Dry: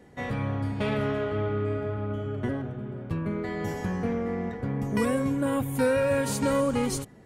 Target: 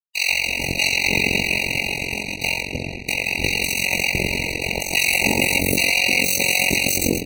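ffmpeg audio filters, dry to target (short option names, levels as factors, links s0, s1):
-filter_complex "[0:a]equalizer=f=100:t=o:w=0.67:g=-10,equalizer=f=400:t=o:w=0.67:g=-6,equalizer=f=6300:t=o:w=0.67:g=11,asplit=4[s0][s1][s2][s3];[s1]asetrate=35002,aresample=44100,atempo=1.25992,volume=0.355[s4];[s2]asetrate=58866,aresample=44100,atempo=0.749154,volume=0.794[s5];[s3]asetrate=88200,aresample=44100,atempo=0.5,volume=0.631[s6];[s0][s4][s5][s6]amix=inputs=4:normalize=0,aeval=exprs='0.299*(cos(1*acos(clip(val(0)/0.299,-1,1)))-cos(1*PI/2))+0.106*(cos(4*acos(clip(val(0)/0.299,-1,1)))-cos(4*PI/2))+0.119*(cos(6*acos(clip(val(0)/0.299,-1,1)))-cos(6*PI/2))+0.0596*(cos(7*acos(clip(val(0)/0.299,-1,1)))-cos(7*PI/2))':c=same,highpass=f=42:w=0.5412,highpass=f=42:w=1.3066,aeval=exprs='val(0)+0.00316*(sin(2*PI*60*n/s)+sin(2*PI*2*60*n/s)/2+sin(2*PI*3*60*n/s)/3+sin(2*PI*4*60*n/s)/4+sin(2*PI*5*60*n/s)/5)':c=same,acrossover=split=560[s7][s8];[s7]adelay=300[s9];[s9][s8]amix=inputs=2:normalize=0,acrusher=bits=6:mix=0:aa=0.5,highshelf=f=1900:t=q:w=3:g=10.5,asplit=2[s10][s11];[s11]asplit=3[s12][s13][s14];[s12]adelay=117,afreqshift=-55,volume=0.178[s15];[s13]adelay=234,afreqshift=-110,volume=0.0638[s16];[s14]adelay=351,afreqshift=-165,volume=0.0232[s17];[s15][s16][s17]amix=inputs=3:normalize=0[s18];[s10][s18]amix=inputs=2:normalize=0,tremolo=f=45:d=0.919,alimiter=level_in=5.96:limit=0.891:release=50:level=0:latency=1,afftfilt=real='re*eq(mod(floor(b*sr/1024/950),2),0)':imag='im*eq(mod(floor(b*sr/1024/950),2),0)':win_size=1024:overlap=0.75,volume=0.75"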